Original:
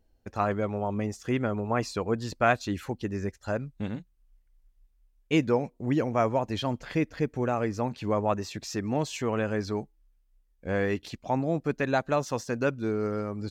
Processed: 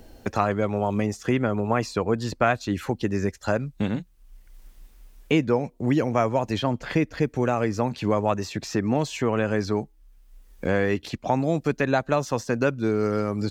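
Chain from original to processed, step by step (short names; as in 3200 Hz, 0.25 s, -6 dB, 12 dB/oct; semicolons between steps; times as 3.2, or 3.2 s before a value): three-band squash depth 70%; gain +4 dB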